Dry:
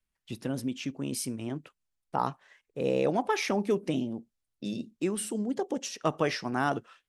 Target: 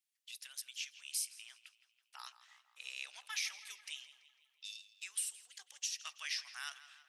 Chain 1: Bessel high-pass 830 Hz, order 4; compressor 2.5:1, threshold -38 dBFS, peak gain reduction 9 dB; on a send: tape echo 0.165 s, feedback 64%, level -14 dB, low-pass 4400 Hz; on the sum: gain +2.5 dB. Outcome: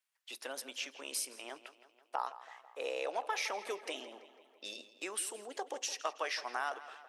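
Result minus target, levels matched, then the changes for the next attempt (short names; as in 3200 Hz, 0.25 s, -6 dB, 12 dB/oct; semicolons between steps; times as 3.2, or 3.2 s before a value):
1000 Hz band +14.5 dB
change: Bessel high-pass 3200 Hz, order 4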